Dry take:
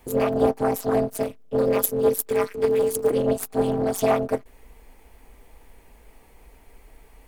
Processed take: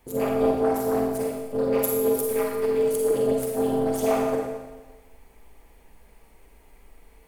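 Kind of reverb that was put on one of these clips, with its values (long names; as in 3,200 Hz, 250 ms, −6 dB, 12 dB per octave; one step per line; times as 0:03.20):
four-comb reverb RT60 1.2 s, DRR −1 dB
level −6 dB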